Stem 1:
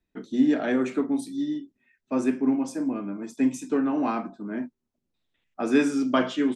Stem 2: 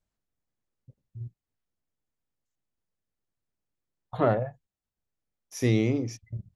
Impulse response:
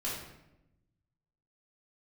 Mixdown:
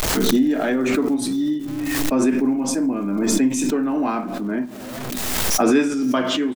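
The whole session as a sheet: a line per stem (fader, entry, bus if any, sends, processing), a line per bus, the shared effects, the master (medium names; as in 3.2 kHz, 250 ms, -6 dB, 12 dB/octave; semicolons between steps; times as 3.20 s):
+2.5 dB, 0.00 s, send -20 dB, no echo send, gain riding within 3 dB 0.5 s
-5.0 dB, 0.00 s, no send, echo send -13.5 dB, one-bit comparator; tone controls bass -8 dB, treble 0 dB; auto duck -16 dB, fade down 1.85 s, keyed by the first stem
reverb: on, RT60 0.90 s, pre-delay 3 ms
echo: delay 513 ms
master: swell ahead of each attack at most 22 dB/s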